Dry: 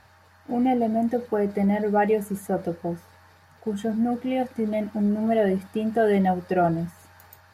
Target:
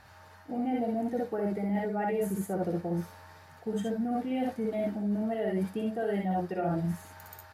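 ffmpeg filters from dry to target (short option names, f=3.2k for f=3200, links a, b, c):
-af "aecho=1:1:59|70:0.708|0.531,areverse,acompressor=threshold=-27dB:ratio=6,areverse,volume=-1dB"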